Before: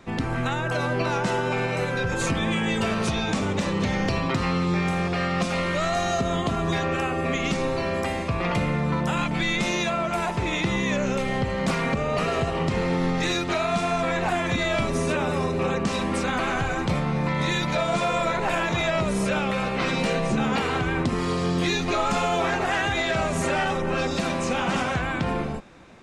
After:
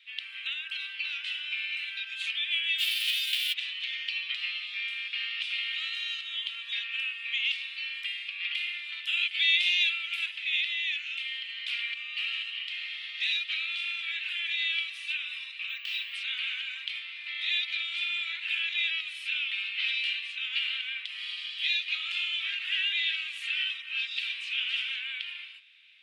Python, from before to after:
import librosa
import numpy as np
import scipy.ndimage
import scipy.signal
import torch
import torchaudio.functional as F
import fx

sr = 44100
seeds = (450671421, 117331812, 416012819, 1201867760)

y = fx.envelope_flatten(x, sr, power=0.1, at=(2.78, 3.52), fade=0.02)
y = fx.tilt_eq(y, sr, slope=2.0, at=(8.57, 10.26))
y = fx.resample_bad(y, sr, factor=2, down='none', up='hold', at=(15.69, 16.14))
y = fx.highpass(y, sr, hz=280.0, slope=24, at=(22.81, 23.45))
y = scipy.signal.sosfilt(scipy.signal.cheby2(4, 60, 760.0, 'highpass', fs=sr, output='sos'), y)
y = fx.high_shelf_res(y, sr, hz=4500.0, db=-14.0, q=3.0)